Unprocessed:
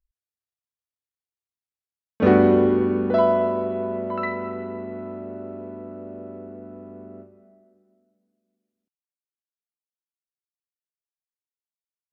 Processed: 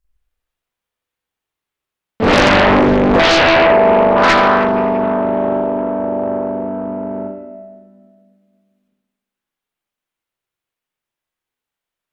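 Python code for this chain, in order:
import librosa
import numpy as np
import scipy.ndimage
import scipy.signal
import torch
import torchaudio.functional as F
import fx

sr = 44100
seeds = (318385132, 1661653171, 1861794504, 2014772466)

p1 = fx.high_shelf(x, sr, hz=3100.0, db=10.5, at=(4.19, 5.53))
p2 = fx.rev_spring(p1, sr, rt60_s=1.0, pass_ms=(44, 56), chirp_ms=55, drr_db=-8.5)
p3 = fx.fold_sine(p2, sr, drive_db=16, ceiling_db=5.0)
p4 = p2 + (p3 * 10.0 ** (-5.0 / 20.0))
p5 = fx.doppler_dist(p4, sr, depth_ms=0.91)
y = p5 * 10.0 ** (-9.0 / 20.0)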